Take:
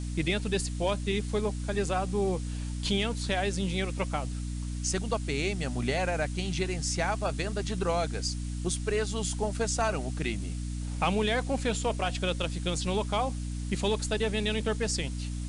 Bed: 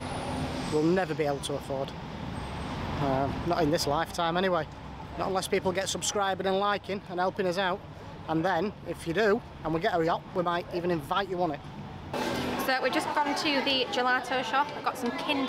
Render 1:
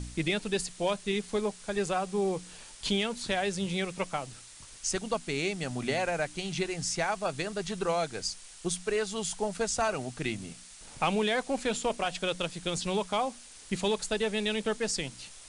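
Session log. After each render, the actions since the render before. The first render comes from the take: de-hum 60 Hz, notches 5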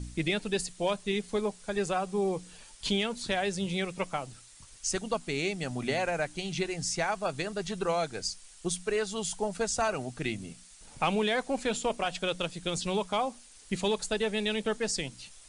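noise reduction 6 dB, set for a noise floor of -50 dBFS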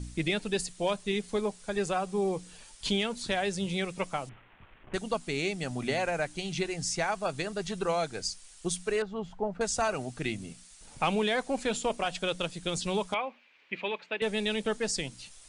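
4.29–4.94 s: CVSD coder 16 kbps; 9.02–9.61 s: low-pass 1.4 kHz; 13.14–14.22 s: cabinet simulation 400–2900 Hz, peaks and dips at 430 Hz -4 dB, 730 Hz -6 dB, 1.3 kHz -3 dB, 2.4 kHz +9 dB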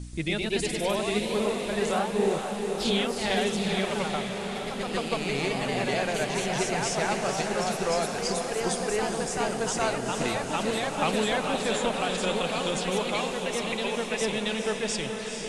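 ever faster or slower copies 133 ms, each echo +1 st, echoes 3; on a send: echo that smears into a reverb 458 ms, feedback 69%, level -6 dB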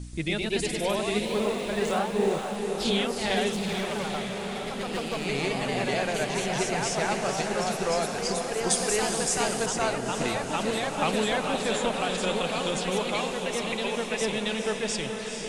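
1.25–2.56 s: median filter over 3 samples; 3.52–5.25 s: hard clipper -26 dBFS; 8.70–9.66 s: treble shelf 3.2 kHz +9.5 dB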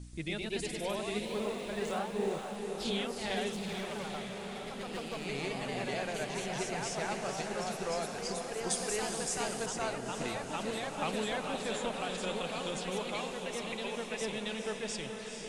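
trim -8.5 dB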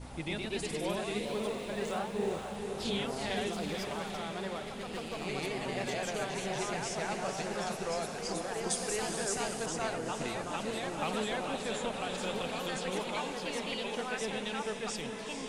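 add bed -14.5 dB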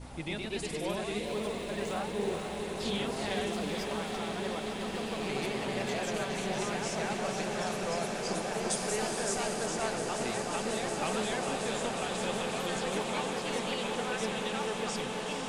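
echo with a slow build-up 181 ms, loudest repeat 8, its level -14 dB

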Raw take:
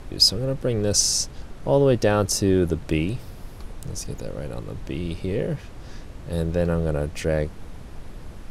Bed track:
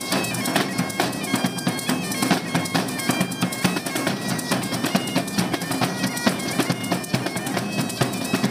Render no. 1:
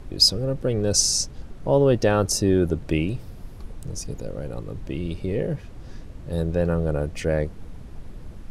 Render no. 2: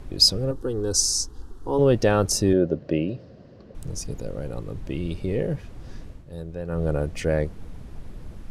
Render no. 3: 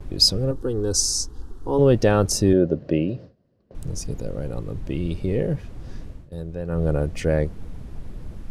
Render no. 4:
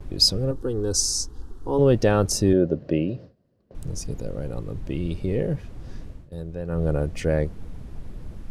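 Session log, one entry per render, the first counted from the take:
noise reduction 6 dB, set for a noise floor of -40 dBFS
0.51–1.79 s: static phaser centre 610 Hz, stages 6; 2.53–3.75 s: cabinet simulation 150–4500 Hz, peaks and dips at 560 Hz +9 dB, 870 Hz -10 dB, 1.3 kHz -7 dB, 2.3 kHz -10 dB, 3.5 kHz -9 dB; 6.08–6.84 s: dip -10.5 dB, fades 0.17 s
bass shelf 440 Hz +3.5 dB; gate with hold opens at -31 dBFS
trim -1.5 dB

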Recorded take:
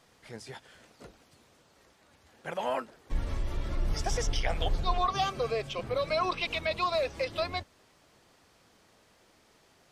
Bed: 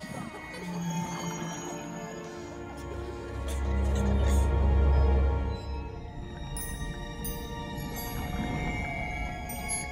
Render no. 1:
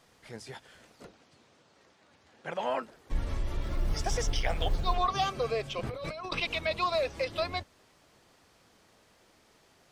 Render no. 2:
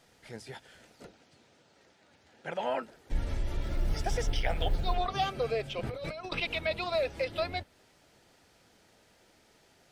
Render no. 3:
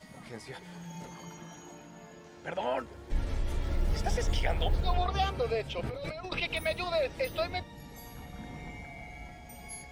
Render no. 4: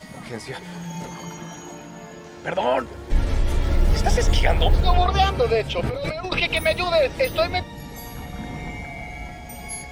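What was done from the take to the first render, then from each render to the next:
1.05–2.83 s: band-pass 100–6700 Hz; 3.62–4.96 s: companded quantiser 8-bit; 5.83–6.40 s: compressor with a negative ratio -37 dBFS
band-stop 1.1 kHz, Q 5.6; dynamic bell 6.4 kHz, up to -7 dB, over -54 dBFS, Q 1.4
add bed -11.5 dB
trim +11 dB

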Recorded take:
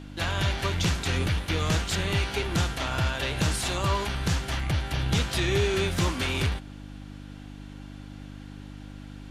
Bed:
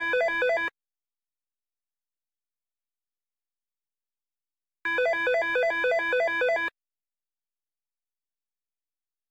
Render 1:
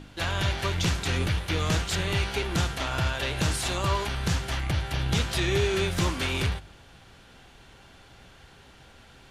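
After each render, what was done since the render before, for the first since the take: de-hum 50 Hz, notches 6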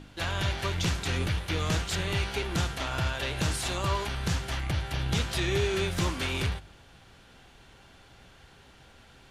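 trim -2.5 dB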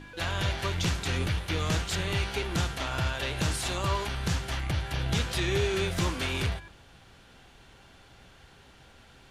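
add bed -23 dB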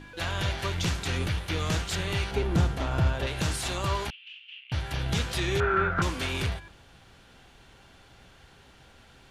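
2.31–3.27 s: tilt shelf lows +6.5 dB, about 1.1 kHz; 4.10–4.72 s: Butterworth band-pass 2.8 kHz, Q 4.8; 5.60–6.02 s: resonant low-pass 1.4 kHz, resonance Q 9.7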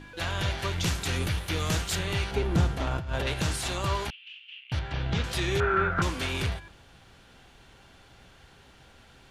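0.84–1.99 s: treble shelf 10 kHz +11.5 dB; 2.87–3.34 s: compressor with a negative ratio -30 dBFS; 4.79–5.24 s: Gaussian low-pass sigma 1.7 samples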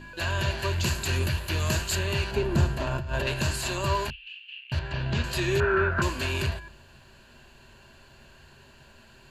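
rippled EQ curve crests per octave 1.4, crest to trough 10 dB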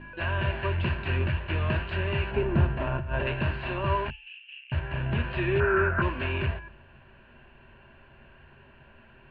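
steep low-pass 2.8 kHz 36 dB/octave; de-hum 433.2 Hz, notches 31

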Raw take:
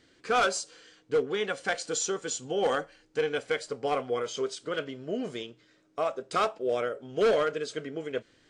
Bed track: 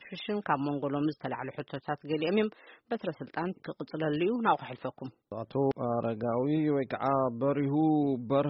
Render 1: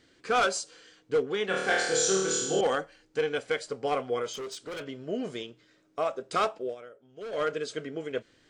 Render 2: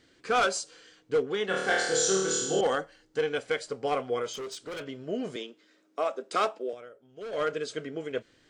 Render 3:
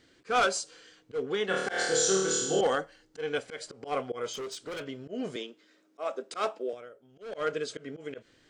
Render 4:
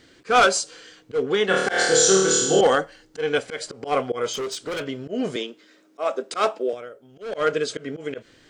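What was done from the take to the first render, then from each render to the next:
1.46–2.61 s: flutter echo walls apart 4.5 m, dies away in 1 s; 4.33–4.86 s: hard clipper -34.5 dBFS; 6.61–7.45 s: dip -16 dB, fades 0.14 s
1.35–3.23 s: band-stop 2.4 kHz, Q 9.9; 5.36–6.73 s: steep high-pass 200 Hz
slow attack 129 ms
trim +9 dB

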